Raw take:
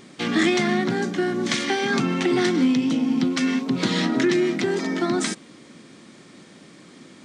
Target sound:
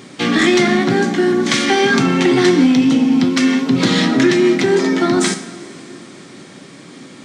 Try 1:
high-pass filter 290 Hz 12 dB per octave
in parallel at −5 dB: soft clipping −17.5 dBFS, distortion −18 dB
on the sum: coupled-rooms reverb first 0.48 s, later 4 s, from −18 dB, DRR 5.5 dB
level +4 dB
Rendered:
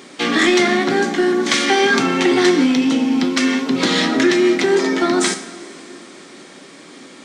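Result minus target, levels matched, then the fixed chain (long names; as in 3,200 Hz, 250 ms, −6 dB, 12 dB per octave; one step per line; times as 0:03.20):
125 Hz band −7.5 dB
high-pass filter 73 Hz 12 dB per octave
in parallel at −5 dB: soft clipping −17.5 dBFS, distortion −16 dB
on the sum: coupled-rooms reverb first 0.48 s, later 4 s, from −18 dB, DRR 5.5 dB
level +4 dB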